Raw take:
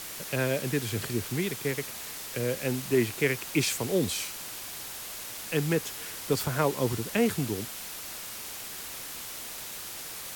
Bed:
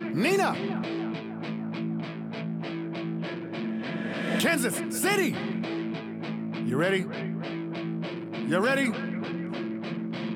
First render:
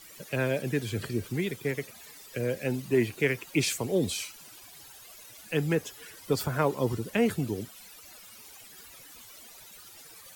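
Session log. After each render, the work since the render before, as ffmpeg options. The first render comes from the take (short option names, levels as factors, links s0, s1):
-af "afftdn=nr=15:nf=-40"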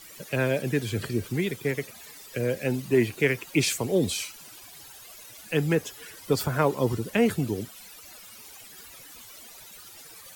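-af "volume=1.41"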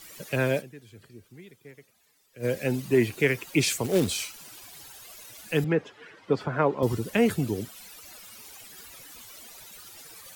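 -filter_complex "[0:a]asettb=1/sr,asplit=3[s0][s1][s2];[s0]atrim=end=3.844[s3];[s1]atrim=start=3.84:end=4.88,asetpts=PTS-STARTPTS,afade=t=in:d=0.004:c=qsin,afade=t=out:st=1.036:d=0.004:c=qsin,acrusher=bits=3:mode=log:mix=0:aa=0.000001[s4];[s2]atrim=start=4.876[s5];[s3][s4]acrossfade=d=0.004:c1=hsin:c2=qsin[s6];[s6][s5]acrossfade=d=0.004:c1=qsin:c2=hsin,asettb=1/sr,asplit=3[s7][s8][s9];[s7]atrim=end=5.644[s10];[s8]atrim=start=5.64:end=6.83,asetpts=PTS-STARTPTS,afade=t=in:d=0.004:c=qsin,afade=t=out:st=1.186:d=0.004:c=qsin,highpass=150,lowpass=2300[s11];[s9]atrim=start=6.826[s12];[s10][s11]acrossfade=d=0.004:c1=hsin:c2=qsin[s13];[s13][s12]acrossfade=d=0.004:c1=qsin:c2=hsin,asplit=3[s14][s15][s16];[s14]atrim=end=0.87,asetpts=PTS-STARTPTS,afade=t=out:st=0.59:d=0.28:c=exp:silence=0.0944061[s17];[s15]atrim=start=0.87:end=2.17,asetpts=PTS-STARTPTS,volume=0.0944[s18];[s16]atrim=start=2.17,asetpts=PTS-STARTPTS,afade=t=in:d=0.28:c=exp:silence=0.0944061[s19];[s17][s18][s19]concat=n=3:v=0:a=1"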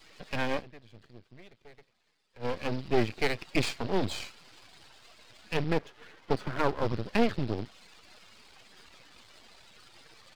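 -af "aresample=11025,acrusher=bits=5:mode=log:mix=0:aa=0.000001,aresample=44100,aeval=exprs='max(val(0),0)':c=same"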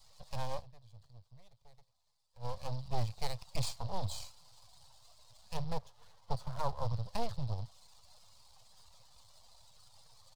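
-af "firequalizer=gain_entry='entry(120,0);entry(180,-13);entry(330,-30);entry(530,-9);entry(970,-4);entry(1500,-20);entry(2400,-20);entry(4100,-5);entry(8400,-1)':delay=0.05:min_phase=1"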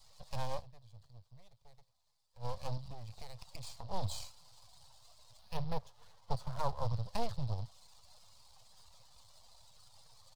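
-filter_complex "[0:a]asettb=1/sr,asplit=3[s0][s1][s2];[s0]atrim=end=2.774[s3];[s1]atrim=start=2.77:end=3.91,asetpts=PTS-STARTPTS,afade=t=in:d=0.004:c=qsin,afade=t=out:st=1.136:d=0.004:c=qsin,acompressor=threshold=0.0112:ratio=16:attack=3.2:release=140:knee=1:detection=peak[s4];[s2]atrim=start=3.906[s5];[s3][s4]acrossfade=d=0.004:c1=hsin:c2=qsin[s6];[s6][s5]acrossfade=d=0.004:c1=qsin:c2=hsin,asettb=1/sr,asplit=3[s7][s8][s9];[s7]atrim=end=5.394[s10];[s8]atrim=start=5.39:end=5.79,asetpts=PTS-STARTPTS,afade=t=in:d=0.004:c=qsin,afade=t=out:st=0.396:d=0.004:c=qsin,equalizer=f=7500:w=2.5:g=-14[s11];[s9]atrim=start=5.786[s12];[s10][s11]acrossfade=d=0.004:c1=hsin:c2=qsin[s13];[s13][s12]acrossfade=d=0.004:c1=qsin:c2=hsin"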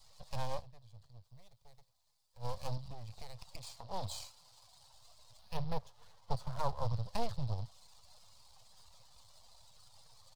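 -filter_complex "[0:a]asettb=1/sr,asplit=3[s0][s1][s2];[s0]atrim=end=1.244[s3];[s1]atrim=start=1.24:end=2.76,asetpts=PTS-STARTPTS,afade=t=in:d=0.004:c=qsin,afade=t=out:st=1.516:d=0.004:c=qsin,highshelf=f=7100:g=5.5[s4];[s2]atrim=start=2.756[s5];[s3][s4]acrossfade=d=0.004:c1=hsin:c2=qsin[s6];[s6][s5]acrossfade=d=0.004:c1=qsin:c2=hsin,asettb=1/sr,asplit=3[s7][s8][s9];[s7]atrim=end=3.584[s10];[s8]atrim=start=3.58:end=4.94,asetpts=PTS-STARTPTS,afade=t=in:d=0.004:c=qsin,afade=t=out:st=1.356:d=0.004:c=qsin,lowshelf=f=170:g=-7.5[s11];[s9]atrim=start=4.936[s12];[s10][s11]acrossfade=d=0.004:c1=hsin:c2=qsin[s13];[s13][s12]acrossfade=d=0.004:c1=qsin:c2=hsin"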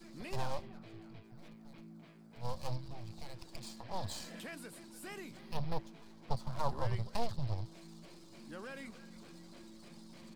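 -filter_complex "[1:a]volume=0.075[s0];[0:a][s0]amix=inputs=2:normalize=0"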